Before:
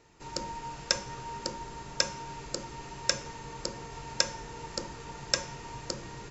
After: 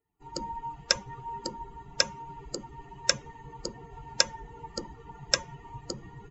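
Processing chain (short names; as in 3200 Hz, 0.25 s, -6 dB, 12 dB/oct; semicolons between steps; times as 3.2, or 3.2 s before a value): per-bin expansion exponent 2; gain +5 dB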